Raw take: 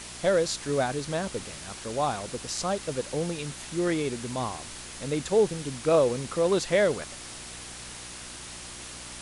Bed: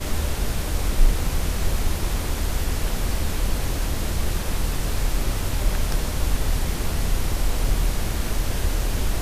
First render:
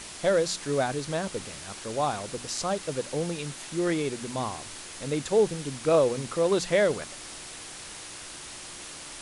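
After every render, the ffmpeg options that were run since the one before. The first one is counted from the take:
ffmpeg -i in.wav -af "bandreject=frequency=60:width_type=h:width=4,bandreject=frequency=120:width_type=h:width=4,bandreject=frequency=180:width_type=h:width=4,bandreject=frequency=240:width_type=h:width=4" out.wav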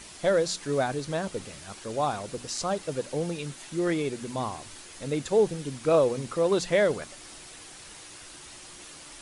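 ffmpeg -i in.wav -af "afftdn=noise_reduction=6:noise_floor=-42" out.wav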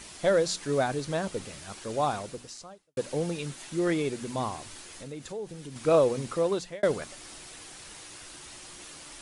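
ffmpeg -i in.wav -filter_complex "[0:a]asettb=1/sr,asplit=3[link_01][link_02][link_03];[link_01]atrim=end=4.924[link_04];[link_02]atrim=start=4.92:end=5.76,asetpts=PTS-STARTPTS,afade=type=in:duration=0.004:curve=qsin,afade=type=out:start_time=0.836:duration=0.004:curve=qsin,acompressor=threshold=-41dB:ratio=2.5:attack=3.2:release=140:knee=1:detection=peak[link_05];[link_03]atrim=start=5.756[link_06];[link_04][link_05]acrossfade=duration=0.004:curve1=hsin:curve2=qsin[link_07];[link_07][link_06]acrossfade=duration=0.004:curve1=qsin:curve2=hsin,asplit=3[link_08][link_09][link_10];[link_08]atrim=end=2.97,asetpts=PTS-STARTPTS,afade=type=out:start_time=2.18:duration=0.79:curve=qua[link_11];[link_09]atrim=start=2.97:end=6.83,asetpts=PTS-STARTPTS,afade=type=in:duration=0.004:curve=hsin,afade=type=out:start_time=3.37:duration=0.49[link_12];[link_10]atrim=start=6.83,asetpts=PTS-STARTPTS,afade=type=in:duration=0.004:curve=hsin[link_13];[link_11][link_12][link_13]concat=n=3:v=0:a=1" out.wav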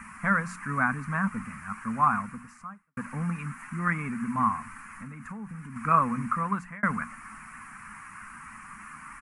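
ffmpeg -i in.wav -af "firequalizer=gain_entry='entry(130,0);entry(230,12);entry(330,-19);entry(560,-18);entry(1100,14);entry(2400,2);entry(3500,-29);entry(5100,-20);entry(8800,-8);entry(13000,-4)':delay=0.05:min_phase=1" out.wav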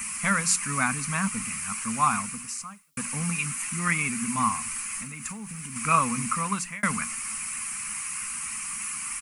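ffmpeg -i in.wav -af "aexciter=amount=12.1:drive=4.8:freq=2500" out.wav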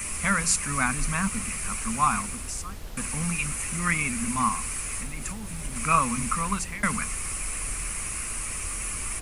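ffmpeg -i in.wav -i bed.wav -filter_complex "[1:a]volume=-15dB[link_01];[0:a][link_01]amix=inputs=2:normalize=0" out.wav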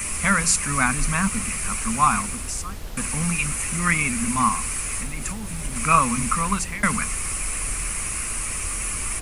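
ffmpeg -i in.wav -af "volume=4.5dB,alimiter=limit=-3dB:level=0:latency=1" out.wav

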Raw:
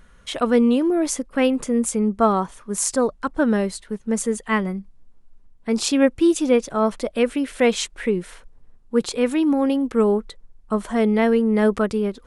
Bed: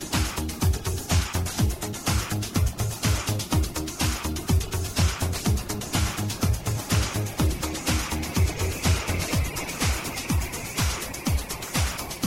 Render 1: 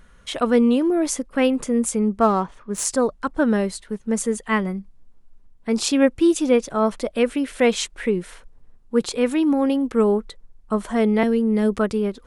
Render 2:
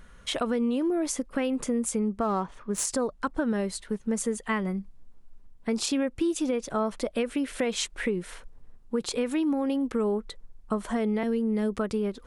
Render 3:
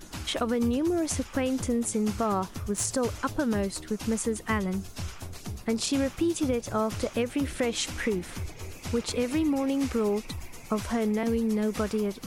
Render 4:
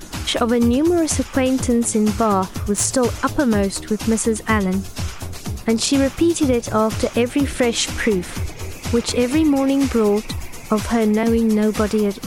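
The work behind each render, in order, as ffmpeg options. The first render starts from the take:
ffmpeg -i in.wav -filter_complex "[0:a]asettb=1/sr,asplit=3[link_01][link_02][link_03];[link_01]atrim=end=2.194[link_04];[link_02]atrim=start=2.19:end=2.85,asetpts=PTS-STARTPTS,afade=type=in:duration=0.004:curve=qsin,afade=type=out:start_time=0.656:duration=0.004:curve=qsin,adynamicsmooth=sensitivity=7:basefreq=3500[link_05];[link_03]atrim=start=2.846[link_06];[link_04][link_05]acrossfade=duration=0.004:curve1=hsin:curve2=qsin[link_07];[link_07][link_06]acrossfade=duration=0.004:curve1=qsin:curve2=hsin,asettb=1/sr,asplit=3[link_08][link_09][link_10];[link_08]atrim=end=11.234[link_11];[link_09]atrim=start=11.23:end=11.79,asetpts=PTS-STARTPTS,afade=type=in:duration=0.004:curve=qsin,afade=type=out:start_time=0.556:duration=0.004:curve=qsin,acrossover=split=440|3000[link_12][link_13][link_14];[link_13]acompressor=threshold=-37dB:ratio=2:attack=3.2:release=140:knee=2.83:detection=peak[link_15];[link_12][link_15][link_14]amix=inputs=3:normalize=0[link_16];[link_10]atrim=start=11.786[link_17];[link_11][link_16]acrossfade=duration=0.004:curve1=hsin:curve2=qsin[link_18];[link_18][link_17]acrossfade=duration=0.004:curve1=qsin:curve2=hsin" out.wav
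ffmpeg -i in.wav -af "alimiter=limit=-11.5dB:level=0:latency=1:release=73,acompressor=threshold=-26dB:ratio=3" out.wav
ffmpeg -i in.wav -i bed.wav -filter_complex "[1:a]volume=-14dB[link_01];[0:a][link_01]amix=inputs=2:normalize=0" out.wav
ffmpeg -i in.wav -af "volume=10dB" out.wav

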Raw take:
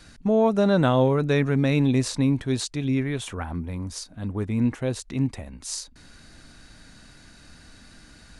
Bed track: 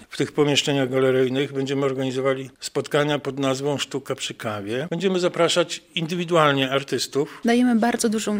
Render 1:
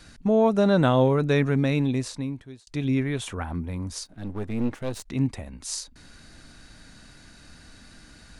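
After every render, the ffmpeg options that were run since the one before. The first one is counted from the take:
ffmpeg -i in.wav -filter_complex "[0:a]asettb=1/sr,asplit=3[link_01][link_02][link_03];[link_01]atrim=end=4.054[link_04];[link_02]atrim=start=4.05:end=5.07,asetpts=PTS-STARTPTS,afade=type=in:duration=0.004:curve=qsin,afade=type=out:start_time=1.016:duration=0.004:curve=qsin,aeval=exprs='if(lt(val(0),0),0.251*val(0),val(0))':channel_layout=same[link_05];[link_03]atrim=start=5.066[link_06];[link_04][link_05]acrossfade=duration=0.004:curve1=hsin:curve2=qsin[link_07];[link_07][link_06]acrossfade=duration=0.004:curve1=qsin:curve2=hsin,asplit=2[link_08][link_09];[link_08]atrim=end=2.67,asetpts=PTS-STARTPTS,afade=type=out:start_time=1.47:duration=1.2[link_10];[link_09]atrim=start=2.67,asetpts=PTS-STARTPTS,afade=type=in:duration=0.004:curve=hsin[link_11];[link_10][link_11]concat=n=2:v=0:a=1" out.wav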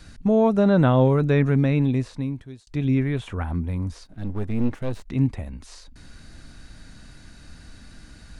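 ffmpeg -i in.wav -filter_complex "[0:a]acrossover=split=3200[link_01][link_02];[link_02]acompressor=threshold=-51dB:ratio=4:attack=1:release=60[link_03];[link_01][link_03]amix=inputs=2:normalize=0,lowshelf=frequency=160:gain=8" out.wav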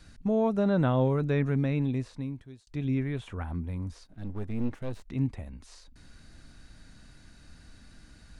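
ffmpeg -i in.wav -af "volume=-7.5dB" out.wav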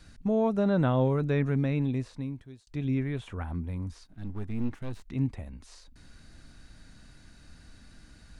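ffmpeg -i in.wav -filter_complex "[0:a]asettb=1/sr,asplit=3[link_01][link_02][link_03];[link_01]atrim=end=3.864[link_04];[link_02]atrim=start=3.86:end=5.13,asetpts=PTS-STARTPTS,afade=type=in:duration=0.004:curve=qsin,afade=type=out:start_time=1.266:duration=0.004:curve=qsin,equalizer=frequency=540:width_type=o:width=0.68:gain=-7[link_05];[link_03]atrim=start=5.126[link_06];[link_04][link_05]acrossfade=duration=0.004:curve1=hsin:curve2=qsin[link_07];[link_07][link_06]acrossfade=duration=0.004:curve1=qsin:curve2=hsin" out.wav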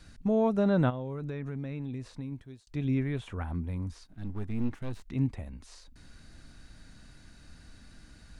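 ffmpeg -i in.wav -filter_complex "[0:a]asplit=3[link_01][link_02][link_03];[link_01]afade=type=out:start_time=0.89:duration=0.02[link_04];[link_02]acompressor=threshold=-33dB:ratio=5:attack=3.2:release=140:knee=1:detection=peak,afade=type=in:start_time=0.89:duration=0.02,afade=type=out:start_time=2.31:duration=0.02[link_05];[link_03]afade=type=in:start_time=2.31:duration=0.02[link_06];[link_04][link_05][link_06]amix=inputs=3:normalize=0" out.wav

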